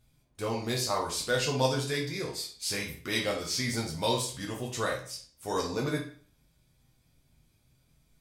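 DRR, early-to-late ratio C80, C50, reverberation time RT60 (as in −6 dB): −3.0 dB, 12.0 dB, 7.0 dB, 0.45 s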